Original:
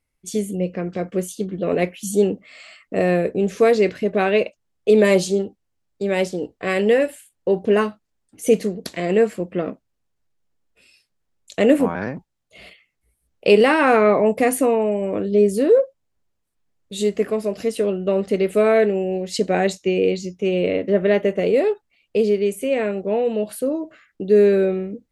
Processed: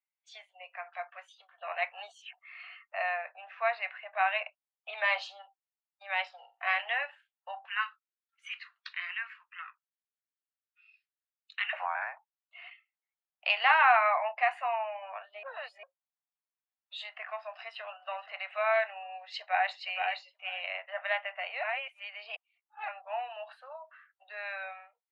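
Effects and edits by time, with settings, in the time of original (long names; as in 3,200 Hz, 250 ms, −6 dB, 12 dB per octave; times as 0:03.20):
0:01.92–0:02.33: reverse
0:03.09–0:04.93: high-frequency loss of the air 170 metres
0:06.35–0:06.76: flutter between parallel walls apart 7.8 metres, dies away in 0.3 s
0:07.67–0:11.73: Butterworth high-pass 1,200 Hz
0:15.43–0:15.83: reverse
0:17.52–0:18.33: delay throw 470 ms, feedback 30%, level −14.5 dB
0:19.14–0:19.80: delay throw 470 ms, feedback 15%, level −5 dB
0:21.63–0:22.88: reverse
whole clip: Butterworth high-pass 700 Hz 72 dB per octave; noise reduction from a noise print of the clip's start 12 dB; low-pass filter 3,400 Hz 24 dB per octave; level −3 dB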